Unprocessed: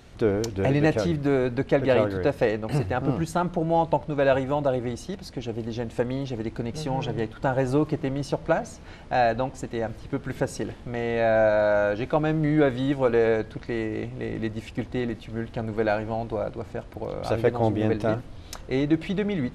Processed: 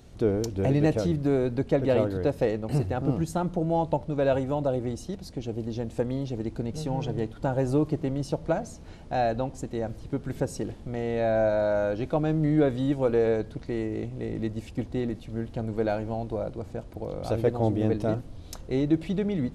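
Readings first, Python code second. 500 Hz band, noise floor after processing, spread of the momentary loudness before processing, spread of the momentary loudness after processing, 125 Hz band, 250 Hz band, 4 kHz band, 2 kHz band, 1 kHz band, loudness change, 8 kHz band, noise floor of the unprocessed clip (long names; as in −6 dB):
−2.5 dB, −45 dBFS, 11 LU, 10 LU, 0.0 dB, −1.0 dB, −5.5 dB, −8.5 dB, −5.0 dB, −2.0 dB, −2.0 dB, −44 dBFS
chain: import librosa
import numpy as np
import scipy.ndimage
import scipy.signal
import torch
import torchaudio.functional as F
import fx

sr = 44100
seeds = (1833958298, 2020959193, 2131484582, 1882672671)

y = fx.peak_eq(x, sr, hz=1800.0, db=-9.0, octaves=2.5)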